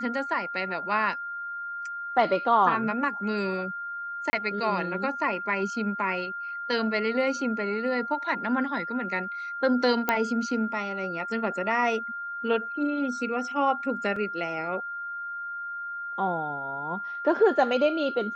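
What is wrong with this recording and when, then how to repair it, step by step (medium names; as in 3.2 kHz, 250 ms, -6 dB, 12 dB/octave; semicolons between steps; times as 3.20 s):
whine 1.4 kHz -32 dBFS
4.30–4.33 s: dropout 30 ms
10.09 s: pop -9 dBFS
14.16 s: dropout 3.9 ms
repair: de-click; band-stop 1.4 kHz, Q 30; interpolate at 4.30 s, 30 ms; interpolate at 14.16 s, 3.9 ms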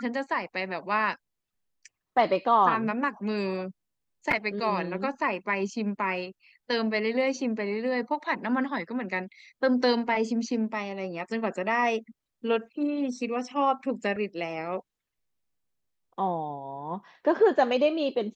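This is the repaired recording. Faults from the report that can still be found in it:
10.09 s: pop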